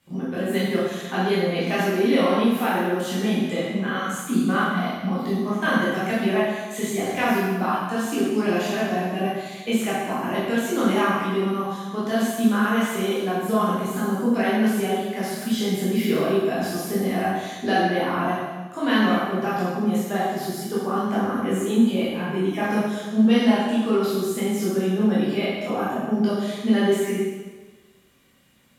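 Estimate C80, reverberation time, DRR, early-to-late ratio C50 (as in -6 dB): 1.0 dB, 1.3 s, -9.0 dB, -1.0 dB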